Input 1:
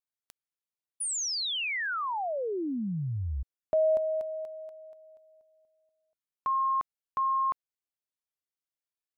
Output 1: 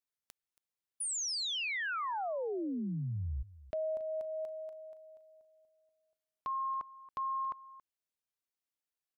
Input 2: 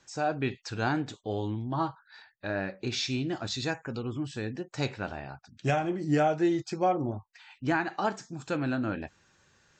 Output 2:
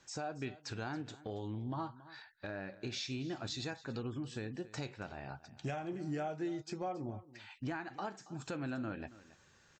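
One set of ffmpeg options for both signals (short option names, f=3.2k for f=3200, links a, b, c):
-af "acompressor=threshold=-32dB:ratio=6:attack=0.43:release=774:knee=1:detection=peak,aecho=1:1:277:0.126,volume=-1.5dB"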